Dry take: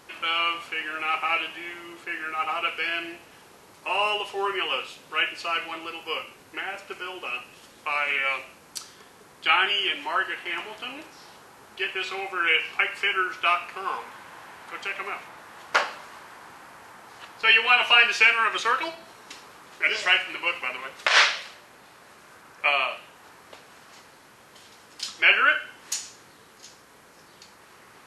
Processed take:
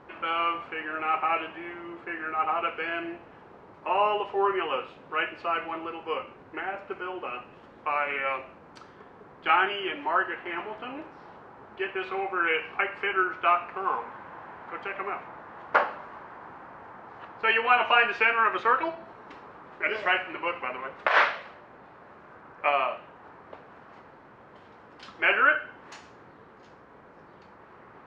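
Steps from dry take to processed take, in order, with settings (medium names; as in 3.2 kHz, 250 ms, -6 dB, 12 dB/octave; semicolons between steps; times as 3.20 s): low-pass 1.3 kHz 12 dB/octave; trim +3.5 dB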